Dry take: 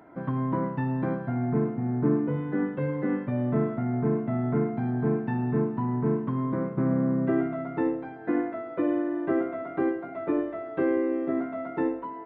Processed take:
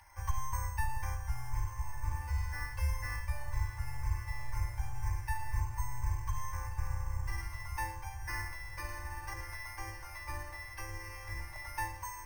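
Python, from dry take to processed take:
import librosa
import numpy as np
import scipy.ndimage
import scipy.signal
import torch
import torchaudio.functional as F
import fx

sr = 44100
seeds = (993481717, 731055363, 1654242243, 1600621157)

y = fx.octave_divider(x, sr, octaves=1, level_db=-4.0)
y = fx.harmonic_tremolo(y, sr, hz=1.9, depth_pct=50, crossover_hz=510.0, at=(9.33, 11.56))
y = fx.rider(y, sr, range_db=10, speed_s=0.5)
y = scipy.signal.sosfilt(scipy.signal.cheby2(4, 40, [160.0, 700.0], 'bandstop', fs=sr, output='sos'), y)
y = fx.peak_eq(y, sr, hz=660.0, db=15.0, octaves=1.7)
y = fx.fixed_phaser(y, sr, hz=550.0, stages=4)
y = fx.echo_diffused(y, sr, ms=1235, feedback_pct=56, wet_db=-10)
y = np.repeat(scipy.signal.resample_poly(y, 1, 6), 6)[:len(y)]
y = y + 0.54 * np.pad(y, (int(3.5 * sr / 1000.0), 0))[:len(y)]
y = y * librosa.db_to_amplitude(3.5)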